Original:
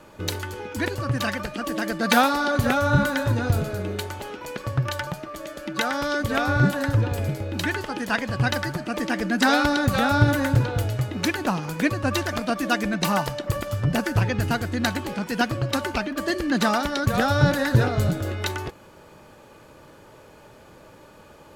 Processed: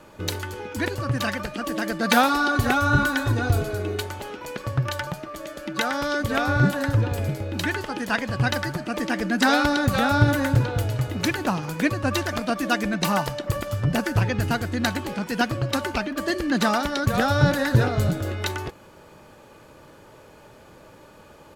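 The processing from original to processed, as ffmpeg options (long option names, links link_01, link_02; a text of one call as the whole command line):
ffmpeg -i in.wav -filter_complex "[0:a]asettb=1/sr,asplit=3[link_01][link_02][link_03];[link_01]atrim=end=2.284[link_04];[link_02]atrim=start=2.28:end=4.02,asetpts=PTS-STARTPTS,afade=type=in:duration=0.004:curve=qsin,afade=type=out:start_time=1.736:duration=0.004:curve=qsin,aecho=1:1:2.7:0.57,atrim=end_sample=76734[link_05];[link_03]atrim=start=4.016[link_06];[link_04][link_05]acrossfade=duration=0.004:curve1=hsin:curve2=qsin[link_07];[link_07][link_06]acrossfade=duration=0.004:curve1=qsin:curve2=hsin,asplit=2[link_08][link_09];[link_09]afade=type=in:start_time=10.58:duration=0.01,afade=type=out:start_time=11.1:duration=0.01,aecho=0:1:310|620|930:0.223872|0.0783552|0.0274243[link_10];[link_08][link_10]amix=inputs=2:normalize=0" out.wav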